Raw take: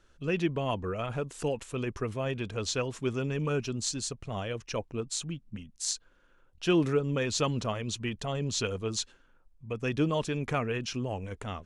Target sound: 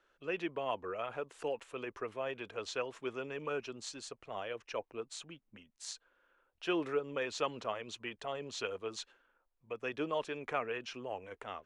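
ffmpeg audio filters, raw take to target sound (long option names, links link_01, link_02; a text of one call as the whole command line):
ffmpeg -i in.wav -filter_complex "[0:a]acrossover=split=360 3300:gain=0.1 1 0.251[link_01][link_02][link_03];[link_01][link_02][link_03]amix=inputs=3:normalize=0,volume=-3dB" out.wav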